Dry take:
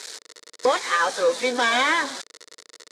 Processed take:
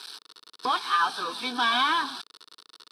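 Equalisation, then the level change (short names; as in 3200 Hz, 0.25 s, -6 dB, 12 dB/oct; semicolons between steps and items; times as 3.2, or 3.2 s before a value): low shelf 91 Hz -11.5 dB; fixed phaser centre 2000 Hz, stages 6; 0.0 dB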